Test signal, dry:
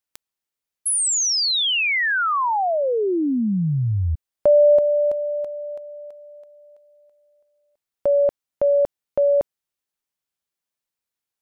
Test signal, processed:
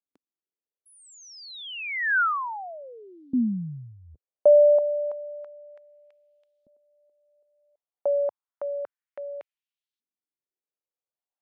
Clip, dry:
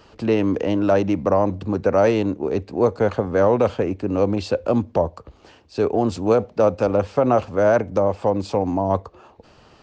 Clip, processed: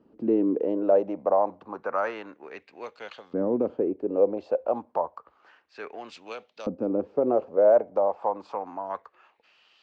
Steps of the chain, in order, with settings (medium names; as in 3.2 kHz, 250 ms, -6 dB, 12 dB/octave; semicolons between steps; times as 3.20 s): peaking EQ 99 Hz -8.5 dB 0.58 oct; LFO band-pass saw up 0.3 Hz 240–3800 Hz